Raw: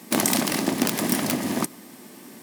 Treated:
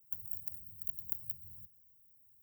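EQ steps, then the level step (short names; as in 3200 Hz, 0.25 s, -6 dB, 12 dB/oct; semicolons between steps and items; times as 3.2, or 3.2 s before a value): inverse Chebyshev band-stop 250–9800 Hz, stop band 60 dB; low shelf 150 Hz -4 dB; 0.0 dB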